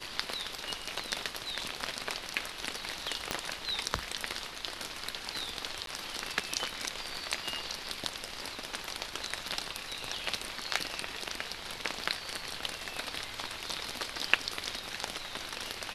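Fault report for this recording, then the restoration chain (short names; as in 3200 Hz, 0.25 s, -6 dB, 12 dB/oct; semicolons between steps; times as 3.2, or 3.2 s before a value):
3.31 pop -14 dBFS
5.86–5.87 gap 12 ms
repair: de-click; interpolate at 5.86, 12 ms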